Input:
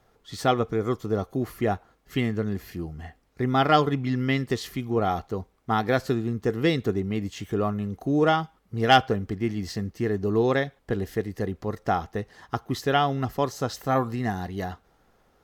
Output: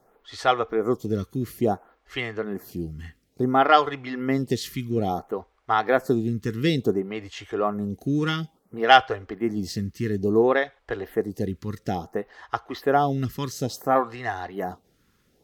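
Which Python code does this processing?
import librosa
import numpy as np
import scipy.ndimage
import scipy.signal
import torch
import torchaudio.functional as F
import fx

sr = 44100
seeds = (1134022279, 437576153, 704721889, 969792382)

y = fx.low_shelf(x, sr, hz=120.0, db=-5.0)
y = fx.stagger_phaser(y, sr, hz=0.58)
y = y * 10.0 ** (4.5 / 20.0)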